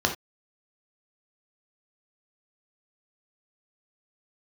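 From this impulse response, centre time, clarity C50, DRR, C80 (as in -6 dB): 15 ms, 9.5 dB, 2.5 dB, 17.0 dB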